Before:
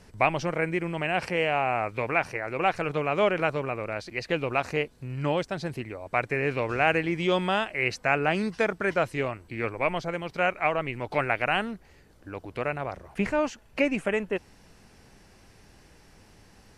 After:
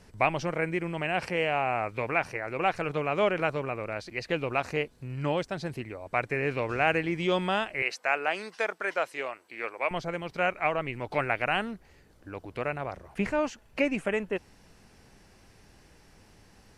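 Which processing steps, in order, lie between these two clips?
7.82–9.91 HPF 530 Hz 12 dB/oct; gain -2 dB

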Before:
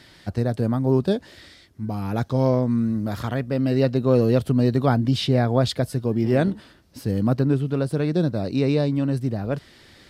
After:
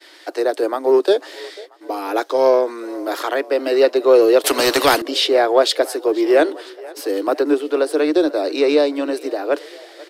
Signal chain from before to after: steep high-pass 300 Hz 96 dB/oct; expander -47 dBFS; frequency-shifting echo 0.491 s, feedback 55%, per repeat +30 Hz, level -22.5 dB; in parallel at -10.5 dB: soft clip -25 dBFS, distortion -9 dB; 4.44–5.02 on the sum: spectral compressor 2:1; gain +8 dB

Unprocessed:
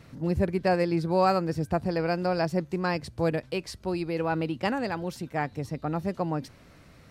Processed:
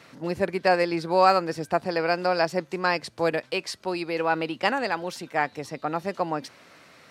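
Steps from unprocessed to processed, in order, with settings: weighting filter A; gain +6 dB

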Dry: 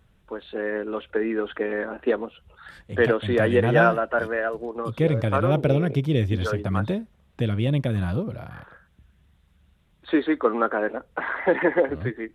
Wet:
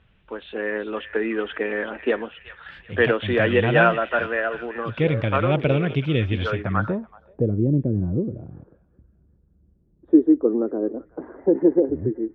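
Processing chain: thin delay 0.379 s, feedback 35%, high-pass 1700 Hz, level -9 dB; low-pass sweep 2800 Hz -> 350 Hz, 6.47–7.59

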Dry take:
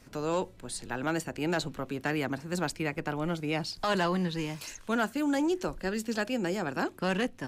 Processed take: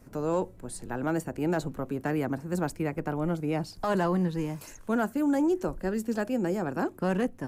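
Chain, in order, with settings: bell 3600 Hz -14.5 dB 2.2 oct; gain +3.5 dB

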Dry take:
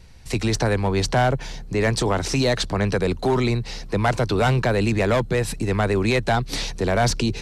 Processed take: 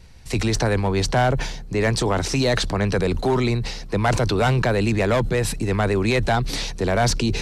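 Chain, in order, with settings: sustainer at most 55 dB/s

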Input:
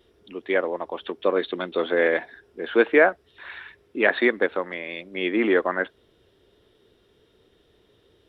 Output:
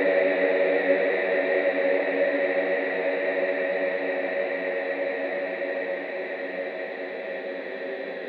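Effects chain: gliding pitch shift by +7 st starting unshifted; Doppler pass-by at 2.21, 13 m/s, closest 11 m; high-pass sweep 430 Hz -> 110 Hz, 0.6–3.5; Paulstretch 25×, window 1.00 s, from 2.06

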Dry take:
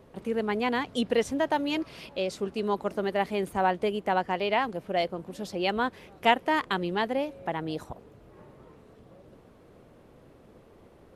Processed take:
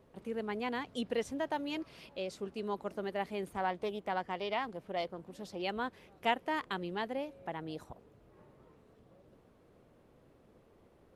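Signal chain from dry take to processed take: 3.47–5.62 Doppler distortion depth 0.16 ms; gain -9 dB

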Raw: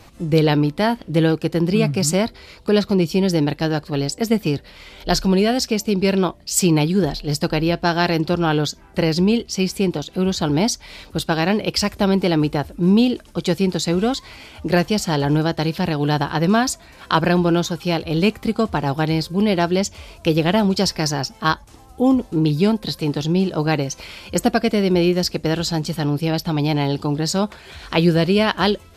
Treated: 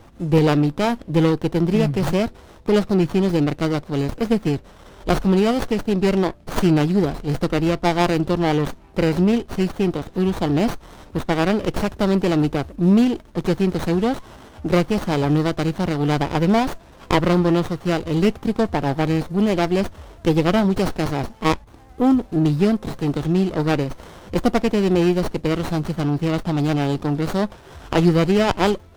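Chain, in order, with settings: running maximum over 17 samples

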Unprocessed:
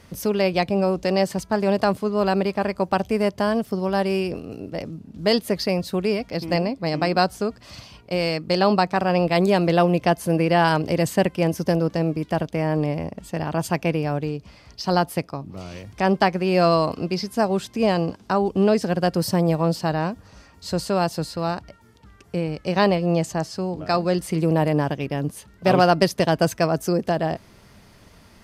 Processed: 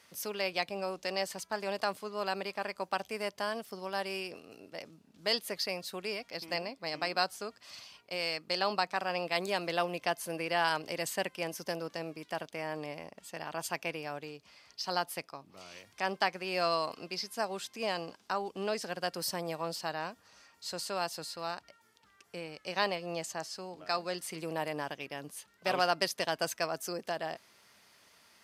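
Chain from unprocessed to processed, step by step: HPF 1500 Hz 6 dB/oct; gain -5 dB

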